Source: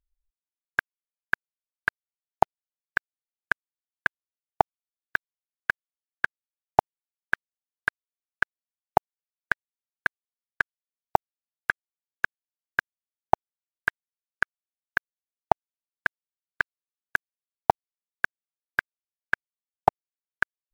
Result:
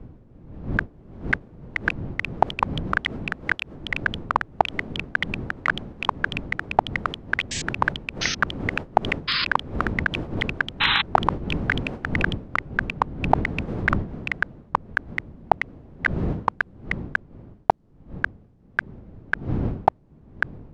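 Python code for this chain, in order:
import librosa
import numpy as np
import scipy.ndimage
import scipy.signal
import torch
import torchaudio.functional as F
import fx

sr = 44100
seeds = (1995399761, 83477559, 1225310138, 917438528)

p1 = fx.dmg_wind(x, sr, seeds[0], corner_hz=200.0, level_db=-44.0)
p2 = scipy.signal.sosfilt(scipy.signal.butter(2, 5600.0, 'lowpass', fs=sr, output='sos'), p1)
p3 = fx.over_compress(p2, sr, threshold_db=-33.0, ratio=-0.5)
p4 = p2 + (p3 * librosa.db_to_amplitude(-1.0))
p5 = fx.spec_paint(p4, sr, seeds[1], shape='noise', start_s=10.8, length_s=0.22, low_hz=790.0, high_hz=4100.0, level_db=-22.0)
p6 = fx.echo_pitch(p5, sr, ms=703, semitones=4, count=3, db_per_echo=-3.0)
y = p6 * librosa.db_to_amplitude(1.5)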